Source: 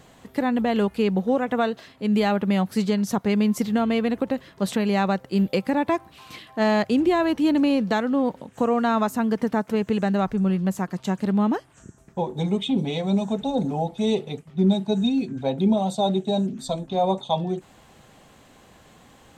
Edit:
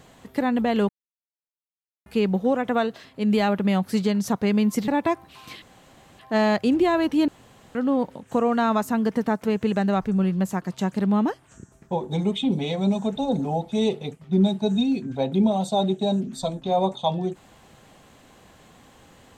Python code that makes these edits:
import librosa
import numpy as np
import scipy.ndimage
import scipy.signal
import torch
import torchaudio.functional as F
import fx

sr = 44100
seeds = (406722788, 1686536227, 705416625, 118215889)

y = fx.edit(x, sr, fx.insert_silence(at_s=0.89, length_s=1.17),
    fx.cut(start_s=3.71, length_s=2.0),
    fx.insert_room_tone(at_s=6.45, length_s=0.57),
    fx.room_tone_fill(start_s=7.54, length_s=0.47), tone=tone)